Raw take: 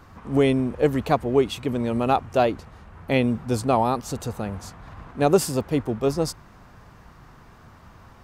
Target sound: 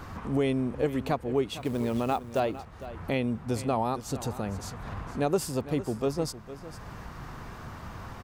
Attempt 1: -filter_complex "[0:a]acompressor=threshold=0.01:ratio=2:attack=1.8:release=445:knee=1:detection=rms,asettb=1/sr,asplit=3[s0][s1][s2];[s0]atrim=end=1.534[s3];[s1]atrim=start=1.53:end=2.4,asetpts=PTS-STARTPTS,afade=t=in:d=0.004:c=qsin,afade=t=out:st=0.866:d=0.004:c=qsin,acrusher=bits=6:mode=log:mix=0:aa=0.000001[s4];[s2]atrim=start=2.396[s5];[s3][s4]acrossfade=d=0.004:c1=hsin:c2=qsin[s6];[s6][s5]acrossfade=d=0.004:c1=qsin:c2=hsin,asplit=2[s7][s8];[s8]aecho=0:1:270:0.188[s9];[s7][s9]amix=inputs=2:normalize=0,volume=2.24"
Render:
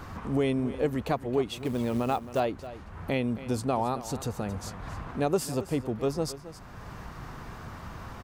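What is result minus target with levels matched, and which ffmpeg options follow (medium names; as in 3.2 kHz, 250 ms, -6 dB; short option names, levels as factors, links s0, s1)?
echo 187 ms early
-filter_complex "[0:a]acompressor=threshold=0.01:ratio=2:attack=1.8:release=445:knee=1:detection=rms,asettb=1/sr,asplit=3[s0][s1][s2];[s0]atrim=end=1.534[s3];[s1]atrim=start=1.53:end=2.4,asetpts=PTS-STARTPTS,afade=t=in:d=0.004:c=qsin,afade=t=out:st=0.866:d=0.004:c=qsin,acrusher=bits=6:mode=log:mix=0:aa=0.000001[s4];[s2]atrim=start=2.396[s5];[s3][s4]acrossfade=d=0.004:c1=hsin:c2=qsin[s6];[s6][s5]acrossfade=d=0.004:c1=qsin:c2=hsin,asplit=2[s7][s8];[s8]aecho=0:1:457:0.188[s9];[s7][s9]amix=inputs=2:normalize=0,volume=2.24"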